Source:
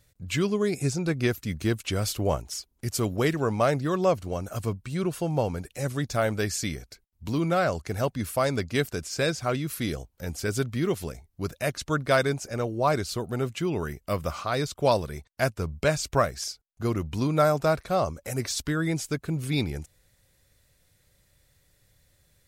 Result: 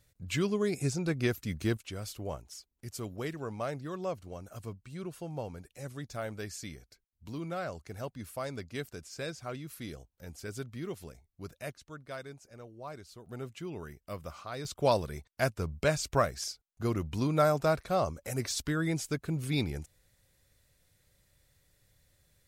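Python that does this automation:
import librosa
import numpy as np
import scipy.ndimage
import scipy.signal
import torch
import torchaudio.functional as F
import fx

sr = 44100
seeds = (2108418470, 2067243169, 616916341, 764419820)

y = fx.gain(x, sr, db=fx.steps((0.0, -4.5), (1.77, -12.5), (11.73, -20.0), (13.26, -12.5), (14.65, -4.0)))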